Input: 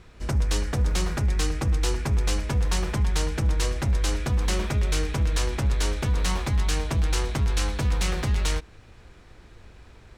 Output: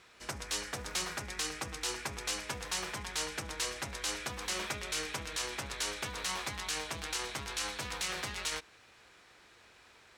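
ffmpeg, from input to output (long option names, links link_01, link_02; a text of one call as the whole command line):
ffmpeg -i in.wav -af "highpass=frequency=1300:poles=1,alimiter=limit=-24dB:level=0:latency=1:release=31" out.wav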